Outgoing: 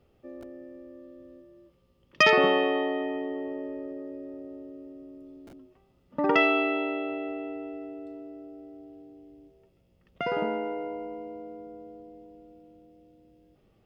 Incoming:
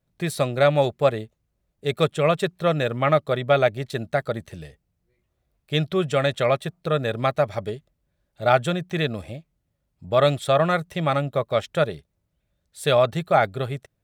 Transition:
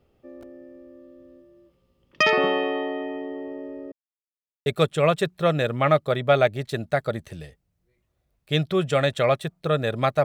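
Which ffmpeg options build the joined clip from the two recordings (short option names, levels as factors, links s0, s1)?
-filter_complex "[0:a]apad=whole_dur=10.24,atrim=end=10.24,asplit=2[s0][s1];[s0]atrim=end=3.92,asetpts=PTS-STARTPTS,afade=t=out:st=3.916:d=0.004:c=hsin[s2];[s1]atrim=start=3.92:end=4.66,asetpts=PTS-STARTPTS,volume=0[s3];[1:a]atrim=start=1.87:end=7.45,asetpts=PTS-STARTPTS,afade=t=in:d=0.004:c=hsin[s4];[s2][s3][s4]concat=n=3:v=0:a=1"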